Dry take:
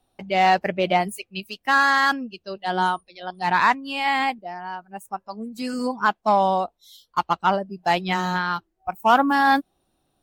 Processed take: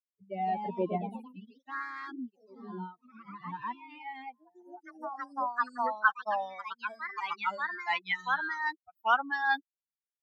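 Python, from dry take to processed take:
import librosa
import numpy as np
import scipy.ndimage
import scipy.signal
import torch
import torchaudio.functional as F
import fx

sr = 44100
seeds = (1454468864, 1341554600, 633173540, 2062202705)

y = fx.bin_expand(x, sr, power=3.0)
y = fx.echo_pitch(y, sr, ms=198, semitones=2, count=3, db_per_echo=-6.0)
y = fx.filter_sweep_bandpass(y, sr, from_hz=240.0, to_hz=2000.0, start_s=3.61, end_s=6.35, q=1.8)
y = y * librosa.db_to_amplitude(3.5)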